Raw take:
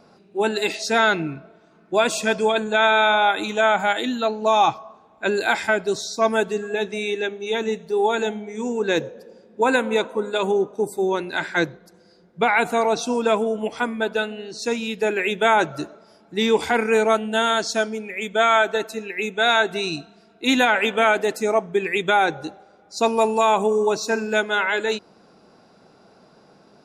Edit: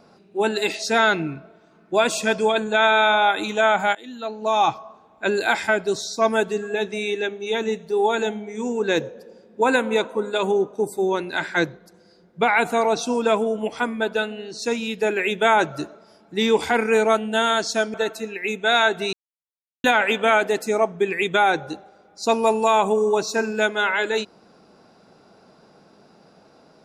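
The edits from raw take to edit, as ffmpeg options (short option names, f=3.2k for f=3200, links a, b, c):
-filter_complex "[0:a]asplit=5[a][b][c][d][e];[a]atrim=end=3.95,asetpts=PTS-STARTPTS,afade=t=out:st=3.946:d=0.004:c=hsin:silence=0.0707946[f];[b]atrim=start=3.95:end=17.942,asetpts=PTS-STARTPTS,afade=t=in:d=0.82:silence=0.0707946[g];[c]atrim=start=18.678:end=19.87,asetpts=PTS-STARTPTS,afade=t=out:st=1.188:d=0.004:c=hsin[h];[d]atrim=start=19.87:end=20.58,asetpts=PTS-STARTPTS,volume=0[i];[e]atrim=start=20.58,asetpts=PTS-STARTPTS,afade=t=in:d=0.004:c=hsin[j];[f][g]concat=n=2:v=0:a=1[k];[h][i][j]concat=n=3:v=0:a=1[l];[k][l]acrossfade=d=0.004:c1=hsin:c2=hsin"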